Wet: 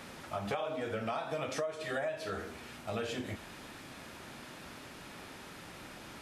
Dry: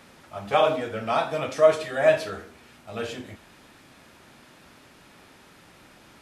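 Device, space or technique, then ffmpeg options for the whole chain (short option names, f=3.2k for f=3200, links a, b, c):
serial compression, leveller first: -af "acompressor=threshold=-26dB:ratio=3,acompressor=threshold=-37dB:ratio=6,volume=3.5dB"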